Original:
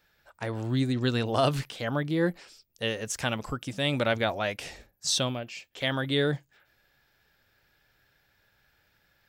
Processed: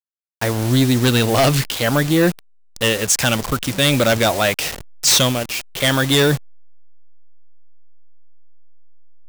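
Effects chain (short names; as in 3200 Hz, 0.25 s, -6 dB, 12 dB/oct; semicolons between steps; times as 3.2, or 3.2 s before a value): level-crossing sampler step -39 dBFS; high shelf 3200 Hz +9.5 dB; in parallel at -5 dB: sine folder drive 12 dB, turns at -8 dBFS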